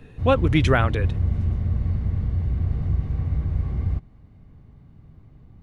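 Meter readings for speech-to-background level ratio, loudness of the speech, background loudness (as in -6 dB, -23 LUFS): 3.5 dB, -22.0 LUFS, -25.5 LUFS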